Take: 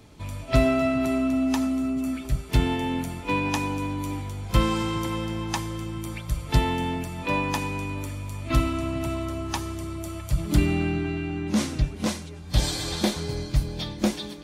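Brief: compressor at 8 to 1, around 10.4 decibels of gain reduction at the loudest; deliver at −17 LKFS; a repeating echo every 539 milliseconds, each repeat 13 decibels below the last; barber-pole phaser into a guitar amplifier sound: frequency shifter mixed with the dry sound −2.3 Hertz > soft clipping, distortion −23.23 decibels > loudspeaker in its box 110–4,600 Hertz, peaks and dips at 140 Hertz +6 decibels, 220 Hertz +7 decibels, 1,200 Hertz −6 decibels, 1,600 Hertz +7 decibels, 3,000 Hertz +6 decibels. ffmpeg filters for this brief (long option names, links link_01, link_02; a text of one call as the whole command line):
ffmpeg -i in.wav -filter_complex "[0:a]acompressor=threshold=-25dB:ratio=8,aecho=1:1:539|1078|1617:0.224|0.0493|0.0108,asplit=2[link_01][link_02];[link_02]afreqshift=-2.3[link_03];[link_01][link_03]amix=inputs=2:normalize=1,asoftclip=threshold=-21.5dB,highpass=110,equalizer=frequency=140:width_type=q:width=4:gain=6,equalizer=frequency=220:width_type=q:width=4:gain=7,equalizer=frequency=1200:width_type=q:width=4:gain=-6,equalizer=frequency=1600:width_type=q:width=4:gain=7,equalizer=frequency=3000:width_type=q:width=4:gain=6,lowpass=frequency=4600:width=0.5412,lowpass=frequency=4600:width=1.3066,volume=16dB" out.wav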